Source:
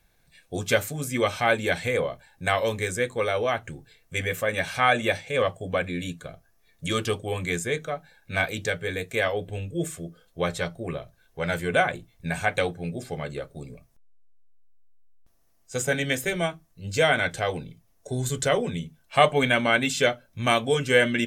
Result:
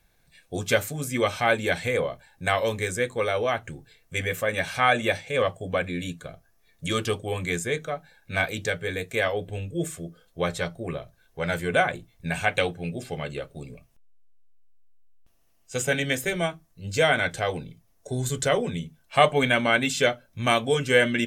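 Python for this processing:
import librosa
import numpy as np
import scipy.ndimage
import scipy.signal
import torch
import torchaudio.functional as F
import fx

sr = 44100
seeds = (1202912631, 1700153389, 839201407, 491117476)

y = fx.peak_eq(x, sr, hz=2800.0, db=7.5, octaves=0.44, at=(12.31, 16.0))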